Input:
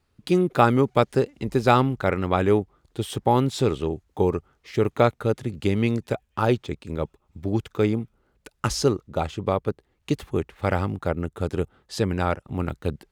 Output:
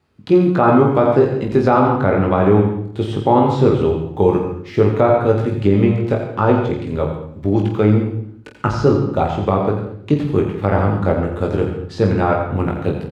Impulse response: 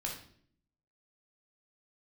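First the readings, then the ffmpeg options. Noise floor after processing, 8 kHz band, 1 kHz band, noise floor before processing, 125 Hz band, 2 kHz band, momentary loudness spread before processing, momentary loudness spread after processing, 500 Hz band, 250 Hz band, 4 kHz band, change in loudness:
-36 dBFS, n/a, +6.5 dB, -70 dBFS, +8.5 dB, +4.0 dB, 12 LU, 9 LU, +8.0 dB, +8.5 dB, -1.5 dB, +8.0 dB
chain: -filter_complex "[0:a]highpass=75,acrossover=split=6900[a][b];[b]acompressor=threshold=-55dB:ratio=4:attack=1:release=60[c];[a][c]amix=inputs=2:normalize=0,highshelf=f=5.1k:g=-11,acrossover=split=1700[d][e];[e]acompressor=threshold=-45dB:ratio=6[f];[d][f]amix=inputs=2:normalize=0,aecho=1:1:20|48|87.2|142.1|218.9:0.631|0.398|0.251|0.158|0.1,asplit=2[g][h];[1:a]atrim=start_sample=2205,adelay=84[i];[h][i]afir=irnorm=-1:irlink=0,volume=-7.5dB[j];[g][j]amix=inputs=2:normalize=0,alimiter=level_in=7.5dB:limit=-1dB:release=50:level=0:latency=1,volume=-1dB"

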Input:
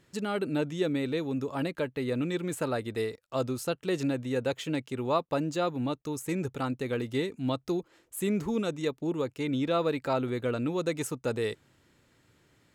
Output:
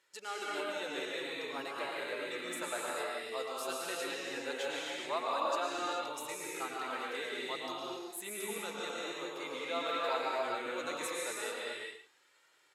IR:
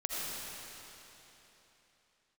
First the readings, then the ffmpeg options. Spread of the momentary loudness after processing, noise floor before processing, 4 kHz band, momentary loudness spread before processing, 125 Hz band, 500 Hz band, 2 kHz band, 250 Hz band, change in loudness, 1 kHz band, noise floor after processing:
7 LU, -67 dBFS, +1.0 dB, 4 LU, -28.0 dB, -7.5 dB, +1.0 dB, -16.5 dB, -6.5 dB, -0.5 dB, -68 dBFS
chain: -filter_complex "[0:a]highpass=790,asplit=2[a][b];[b]adelay=110.8,volume=-9dB,highshelf=f=4k:g=-2.49[c];[a][c]amix=inputs=2:normalize=0[d];[1:a]atrim=start_sample=2205,afade=t=out:st=0.31:d=0.01,atrim=end_sample=14112,asetrate=26019,aresample=44100[e];[d][e]afir=irnorm=-1:irlink=0,flanger=delay=2.1:depth=9.8:regen=-38:speed=0.16:shape=sinusoidal,volume=-2.5dB"

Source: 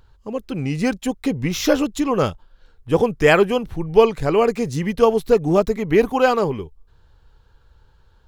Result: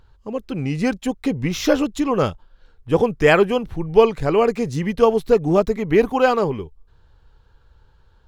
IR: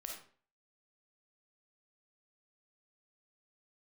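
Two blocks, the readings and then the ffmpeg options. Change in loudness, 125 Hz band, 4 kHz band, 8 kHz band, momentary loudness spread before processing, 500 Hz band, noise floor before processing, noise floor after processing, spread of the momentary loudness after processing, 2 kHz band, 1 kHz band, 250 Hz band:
0.0 dB, 0.0 dB, -1.0 dB, n/a, 9 LU, 0.0 dB, -55 dBFS, -55 dBFS, 9 LU, -0.5 dB, 0.0 dB, 0.0 dB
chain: -af "highshelf=f=6.6k:g=-6"

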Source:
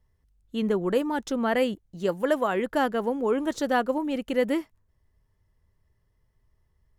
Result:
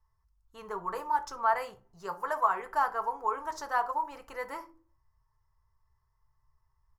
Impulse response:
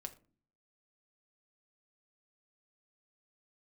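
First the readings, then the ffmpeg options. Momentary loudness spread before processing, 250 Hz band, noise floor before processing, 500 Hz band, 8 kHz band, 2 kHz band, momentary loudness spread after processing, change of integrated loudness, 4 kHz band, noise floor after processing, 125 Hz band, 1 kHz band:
5 LU, -24.5 dB, -70 dBFS, -13.0 dB, -6.0 dB, -4.5 dB, 13 LU, -5.5 dB, -13.0 dB, -75 dBFS, under -15 dB, +2.0 dB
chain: -filter_complex "[0:a]firequalizer=gain_entry='entry(130,0);entry(230,-30);entry(340,-10);entry(500,-11);entry(1000,13);entry(1700,0);entry(3300,-13);entry(5000,4);entry(8400,-4);entry(12000,0)':delay=0.05:min_phase=1[a];[1:a]atrim=start_sample=2205,asetrate=52920,aresample=44100[b];[a][b]afir=irnorm=-1:irlink=0"

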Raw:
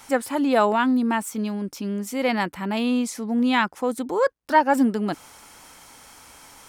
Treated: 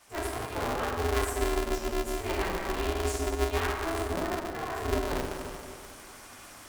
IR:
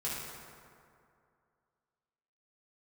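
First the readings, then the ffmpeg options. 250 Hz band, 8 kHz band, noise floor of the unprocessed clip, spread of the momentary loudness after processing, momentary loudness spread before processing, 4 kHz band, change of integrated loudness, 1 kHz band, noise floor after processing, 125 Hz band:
-14.0 dB, -2.0 dB, -49 dBFS, 15 LU, 9 LU, -4.0 dB, -8.5 dB, -9.5 dB, -49 dBFS, +2.0 dB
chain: -filter_complex "[0:a]areverse,acompressor=threshold=-28dB:ratio=6,areverse[a];[1:a]atrim=start_sample=2205[b];[a][b]afir=irnorm=-1:irlink=0,aeval=exprs='val(0)*sgn(sin(2*PI*170*n/s))':c=same,volume=-4.5dB"

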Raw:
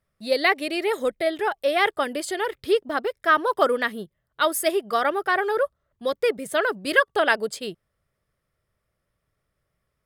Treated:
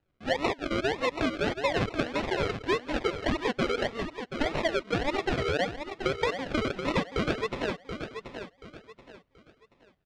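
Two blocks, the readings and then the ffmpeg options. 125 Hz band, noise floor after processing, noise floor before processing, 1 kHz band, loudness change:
n/a, -68 dBFS, -78 dBFS, -8.0 dB, -6.5 dB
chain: -af "equalizer=f=220:w=7:g=-12.5,acrusher=samples=39:mix=1:aa=0.000001:lfo=1:lforange=23.4:lforate=1.7,lowpass=3.8k,acompressor=threshold=-26dB:ratio=6,equalizer=f=2.9k:w=0.46:g=5,aecho=1:1:730|1460|2190|2920:0.376|0.117|0.0361|0.0112"

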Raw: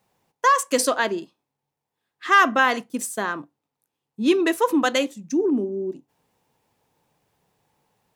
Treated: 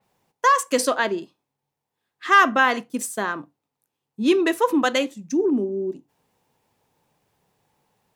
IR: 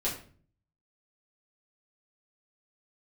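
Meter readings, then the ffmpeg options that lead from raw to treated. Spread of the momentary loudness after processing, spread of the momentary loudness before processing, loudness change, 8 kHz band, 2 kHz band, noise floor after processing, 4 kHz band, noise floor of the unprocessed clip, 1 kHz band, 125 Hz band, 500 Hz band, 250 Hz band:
13 LU, 12 LU, +0.5 dB, -1.5 dB, +0.5 dB, -83 dBFS, 0.0 dB, -84 dBFS, +0.5 dB, +1.0 dB, +0.5 dB, 0.0 dB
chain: -filter_complex "[0:a]asplit=2[a][b];[1:a]atrim=start_sample=2205,atrim=end_sample=3969[c];[b][c]afir=irnorm=-1:irlink=0,volume=-25dB[d];[a][d]amix=inputs=2:normalize=0,adynamicequalizer=threshold=0.0141:dfrequency=4600:dqfactor=0.7:tfrequency=4600:tqfactor=0.7:attack=5:release=100:ratio=0.375:range=3:mode=cutabove:tftype=highshelf"

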